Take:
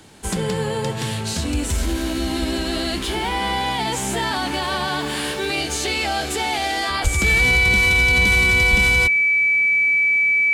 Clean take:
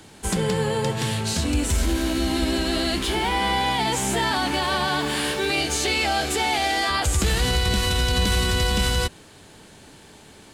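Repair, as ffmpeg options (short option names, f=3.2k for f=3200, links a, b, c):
-filter_complex "[0:a]bandreject=f=2.3k:w=30,asplit=3[a][b][c];[a]afade=t=out:st=7.03:d=0.02[d];[b]highpass=f=140:w=0.5412,highpass=f=140:w=1.3066,afade=t=in:st=7.03:d=0.02,afade=t=out:st=7.15:d=0.02[e];[c]afade=t=in:st=7.15:d=0.02[f];[d][e][f]amix=inputs=3:normalize=0,asplit=3[g][h][i];[g]afade=t=out:st=8.7:d=0.02[j];[h]highpass=f=140:w=0.5412,highpass=f=140:w=1.3066,afade=t=in:st=8.7:d=0.02,afade=t=out:st=8.82:d=0.02[k];[i]afade=t=in:st=8.82:d=0.02[l];[j][k][l]amix=inputs=3:normalize=0"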